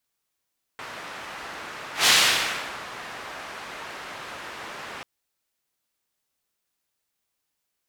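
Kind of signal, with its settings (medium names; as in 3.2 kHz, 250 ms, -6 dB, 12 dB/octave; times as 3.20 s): whoosh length 4.24 s, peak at 1.28 s, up 0.14 s, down 0.79 s, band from 1.4 kHz, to 3.7 kHz, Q 0.83, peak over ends 21 dB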